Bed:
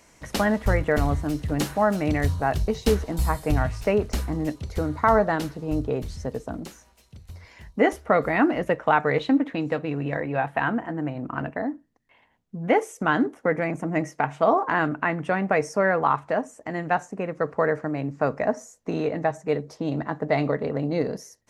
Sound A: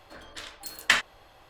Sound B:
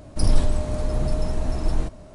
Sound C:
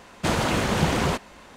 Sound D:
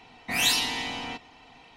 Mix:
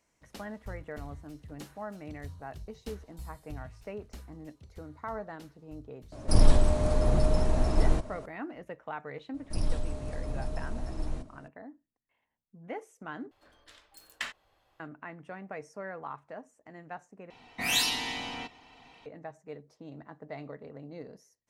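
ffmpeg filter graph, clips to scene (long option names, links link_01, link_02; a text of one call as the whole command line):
ffmpeg -i bed.wav -i cue0.wav -i cue1.wav -i cue2.wav -i cue3.wav -filter_complex "[2:a]asplit=2[link_01][link_02];[0:a]volume=-19dB[link_03];[link_01]equalizer=frequency=790:width=0.51:gain=3[link_04];[link_03]asplit=3[link_05][link_06][link_07];[link_05]atrim=end=13.314[link_08];[1:a]atrim=end=1.49,asetpts=PTS-STARTPTS,volume=-15dB[link_09];[link_06]atrim=start=14.796:end=17.304[link_10];[4:a]atrim=end=1.76,asetpts=PTS-STARTPTS,volume=-3.5dB[link_11];[link_07]atrim=start=19.056[link_12];[link_04]atrim=end=2.14,asetpts=PTS-STARTPTS,volume=-1.5dB,afade=type=in:duration=0.004:curve=hsin,afade=type=out:start_time=2.136:duration=0.004:curve=hsin,adelay=6120[link_13];[link_02]atrim=end=2.14,asetpts=PTS-STARTPTS,volume=-11.5dB,afade=type=in:duration=0.004:curve=hsin,afade=type=out:start_time=2.136:duration=0.004:curve=hsin,adelay=9340[link_14];[link_08][link_09]acrossfade=duration=0.004:curve1=hsin:curve2=hsin[link_15];[link_15][link_10]acrossfade=duration=0.004:curve1=hsin:curve2=hsin[link_16];[link_16][link_11]acrossfade=duration=0.004:curve1=hsin:curve2=hsin[link_17];[link_17][link_12]acrossfade=duration=0.004:curve1=hsin:curve2=hsin[link_18];[link_18][link_13][link_14]amix=inputs=3:normalize=0" out.wav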